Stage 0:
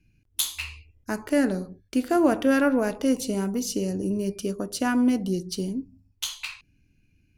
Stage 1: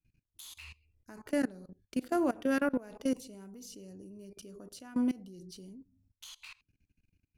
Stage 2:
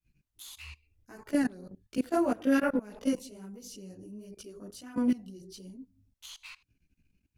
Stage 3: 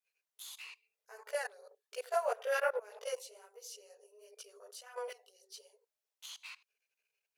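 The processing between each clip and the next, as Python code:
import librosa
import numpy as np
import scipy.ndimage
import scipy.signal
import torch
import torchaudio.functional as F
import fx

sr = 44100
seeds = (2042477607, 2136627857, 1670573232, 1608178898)

y1 = fx.level_steps(x, sr, step_db=21)
y1 = F.gain(torch.from_numpy(y1), -6.5).numpy()
y2 = fx.chorus_voices(y1, sr, voices=2, hz=1.5, base_ms=17, depth_ms=3.0, mix_pct=65)
y2 = F.gain(torch.from_numpy(y2), 5.0).numpy()
y3 = fx.brickwall_highpass(y2, sr, low_hz=410.0)
y3 = F.gain(torch.from_numpy(y3), -1.5).numpy()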